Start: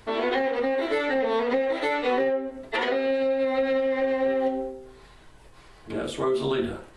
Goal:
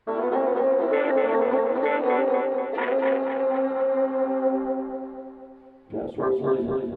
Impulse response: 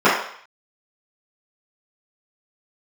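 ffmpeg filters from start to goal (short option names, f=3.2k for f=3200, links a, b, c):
-filter_complex "[0:a]afwtdn=0.0447,bass=f=250:g=-4,treble=f=4k:g=-15,asplit=2[a][b];[b]aecho=0:1:242|484|726|968|1210|1452|1694:0.708|0.368|0.191|0.0995|0.0518|0.0269|0.014[c];[a][c]amix=inputs=2:normalize=0,volume=1.5dB"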